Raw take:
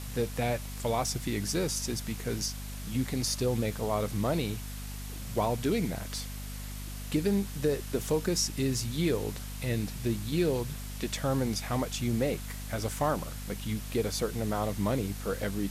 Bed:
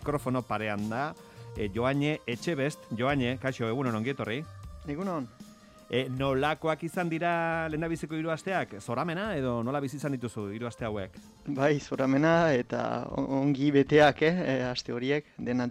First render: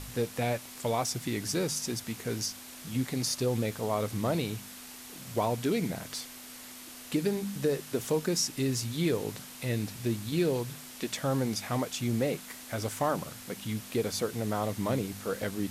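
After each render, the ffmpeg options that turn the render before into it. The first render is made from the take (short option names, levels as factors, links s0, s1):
-af "bandreject=f=50:t=h:w=4,bandreject=f=100:t=h:w=4,bandreject=f=150:t=h:w=4,bandreject=f=200:t=h:w=4"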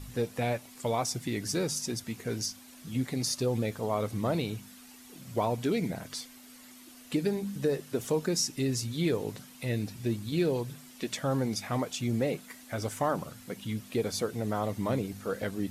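-af "afftdn=nr=9:nf=-47"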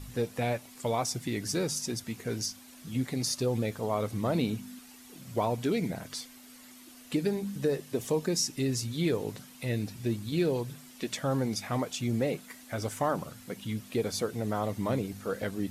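-filter_complex "[0:a]asettb=1/sr,asplit=3[s0][s1][s2];[s0]atrim=end=4.354[s3];[s1]atrim=start=4.35:end=4.79,asetpts=PTS-STARTPTS,afade=t=in:d=0.004:c=qsin,afade=t=out:st=0.436:d=0.004:c=qsin,equalizer=f=240:t=o:w=0.46:g=10.5[s4];[s2]atrim=start=4.786[s5];[s3][s4]acrossfade=d=0.004:c1=hsin:c2=qsin[s6];[s6][s5]acrossfade=d=0.004:c1=qsin:c2=hsin,asettb=1/sr,asplit=3[s7][s8][s9];[s7]atrim=end=7.804[s10];[s8]atrim=start=7.8:end=8.46,asetpts=PTS-STARTPTS,afade=t=in:d=0.004:c=qsin,afade=t=out:st=0.656:d=0.004:c=qsin,bandreject=f=1400:w=6[s11];[s9]atrim=start=8.456[s12];[s10][s11]acrossfade=d=0.004:c1=hsin:c2=qsin[s13];[s13][s12]acrossfade=d=0.004:c1=qsin:c2=hsin"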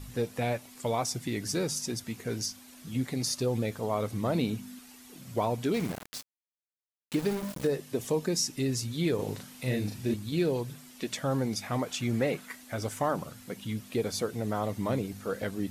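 -filter_complex "[0:a]asettb=1/sr,asplit=3[s0][s1][s2];[s0]atrim=end=5.744[s3];[s1]atrim=start=5.74:end=7.67,asetpts=PTS-STARTPTS,afade=t=in:d=0.004:c=qsin,afade=t=out:st=1.926:d=0.004:c=qsin,aeval=exprs='val(0)*gte(abs(val(0)),0.0178)':c=same[s4];[s2]atrim=start=7.666[s5];[s3][s4]acrossfade=d=0.004:c1=hsin:c2=qsin[s6];[s6][s5]acrossfade=d=0.004:c1=qsin:c2=hsin,asettb=1/sr,asplit=3[s7][s8][s9];[s7]atrim=end=9.154[s10];[s8]atrim=start=9.15:end=10.14,asetpts=PTS-STARTPTS,afade=t=in:d=0.004:c=qsin,afade=t=out:st=0.986:d=0.004:c=qsin,asplit=2[s11][s12];[s12]adelay=39,volume=0.794[s13];[s11][s13]amix=inputs=2:normalize=0,atrim=end_sample=43659[s14];[s9]atrim=start=10.136[s15];[s10][s14]acrossfade=d=0.004:c1=hsin:c2=qsin[s16];[s16][s15]acrossfade=d=0.004:c1=qsin:c2=hsin,asettb=1/sr,asplit=3[s17][s18][s19];[s17]atrim=end=11.884[s20];[s18]atrim=start=11.88:end=12.56,asetpts=PTS-STARTPTS,afade=t=in:d=0.004:c=qsin,afade=t=out:st=0.676:d=0.004:c=qsin,equalizer=f=1500:t=o:w=1.6:g=7[s21];[s19]atrim=start=12.556[s22];[s20][s21]acrossfade=d=0.004:c1=hsin:c2=qsin[s23];[s23][s22]acrossfade=d=0.004:c1=qsin:c2=hsin"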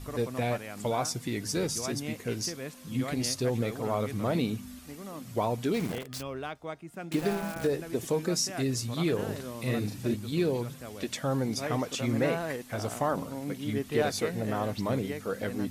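-filter_complex "[1:a]volume=0.316[s0];[0:a][s0]amix=inputs=2:normalize=0"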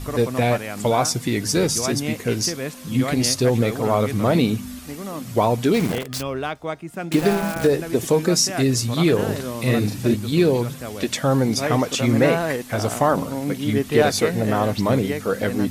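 -af "volume=3.35"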